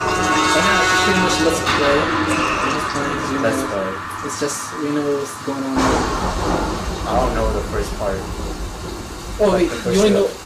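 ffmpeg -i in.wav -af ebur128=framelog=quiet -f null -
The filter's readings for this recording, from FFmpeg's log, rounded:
Integrated loudness:
  I:         -18.5 LUFS
  Threshold: -28.7 LUFS
Loudness range:
  LRA:         5.3 LU
  Threshold: -39.7 LUFS
  LRA low:   -21.6 LUFS
  LRA high:  -16.3 LUFS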